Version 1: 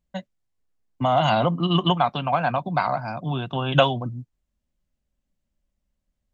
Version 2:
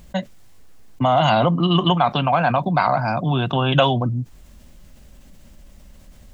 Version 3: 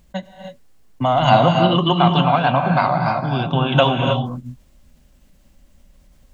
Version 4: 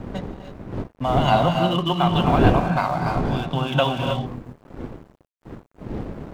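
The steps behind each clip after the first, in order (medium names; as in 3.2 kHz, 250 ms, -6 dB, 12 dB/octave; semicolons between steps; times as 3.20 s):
level flattener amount 50%
gated-style reverb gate 340 ms rising, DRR 2.5 dB; upward expansion 1.5:1, over -32 dBFS; trim +2 dB
wind noise 300 Hz -22 dBFS; crossover distortion -35 dBFS; trim -4.5 dB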